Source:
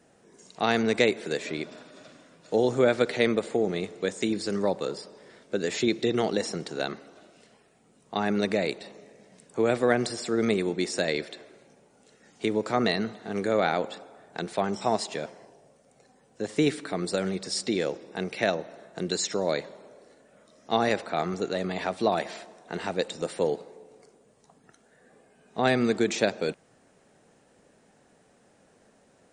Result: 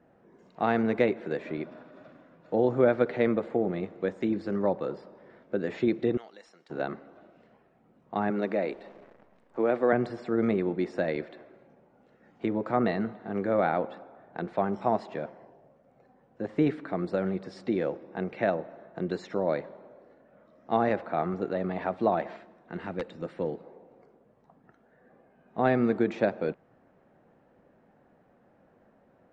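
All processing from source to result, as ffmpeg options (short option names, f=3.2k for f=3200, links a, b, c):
-filter_complex "[0:a]asettb=1/sr,asplit=3[a][b][c];[a]atrim=end=6.174[d];[b]atrim=start=6.17:end=6.7,asetpts=PTS-STARTPTS,afade=t=in:d=0.004:c=qsin,afade=t=out:st=0.526:d=0.004:c=qsin,aderivative,asoftclip=type=hard:threshold=-30.5dB[e];[c]atrim=start=6.696[f];[d][e]acrossfade=d=0.004:c1=hsin:c2=qsin[g];[g][f]acrossfade=d=0.004:c1=qsin:c2=hsin,asettb=1/sr,asplit=3[h][i][j];[h]atrim=end=8.304[k];[i]atrim=start=8.3:end=9.93,asetpts=PTS-STARTPTS,afade=t=in:d=0.004:c=qsin,afade=t=out:st=1.626:d=0.004:c=qsin,highpass=240,acrusher=bits=9:dc=4:mix=0:aa=0.000001[l];[j]atrim=start=9.926[m];[k][l]acrossfade=d=0.004:c1=hsin:c2=qsin[n];[n][m]acrossfade=d=0.004:c1=qsin:c2=hsin,asettb=1/sr,asplit=3[o][p][q];[o]atrim=end=22.364[r];[p]atrim=start=22.36:end=23.64,asetpts=PTS-STARTPTS,afade=t=in:d=0.004:c=qsin,afade=t=out:st=1.276:d=0.004:c=qsin,equalizer=f=730:w=0.97:g=-7.5,aeval=exprs='(mod(6.31*val(0)+1,2)-1)/6.31':c=same[s];[q]atrim=start=23.636[t];[r][s]acrossfade=d=0.004:c1=hsin:c2=qsin[u];[u][t]acrossfade=d=0.004:c1=qsin:c2=hsin,lowpass=1.5k,bandreject=f=430:w=12"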